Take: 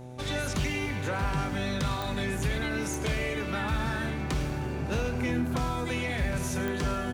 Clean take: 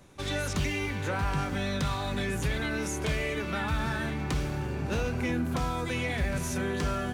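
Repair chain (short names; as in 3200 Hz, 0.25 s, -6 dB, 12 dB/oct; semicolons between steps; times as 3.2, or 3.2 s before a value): de-click; de-hum 125.6 Hz, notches 7; inverse comb 0.106 s -14.5 dB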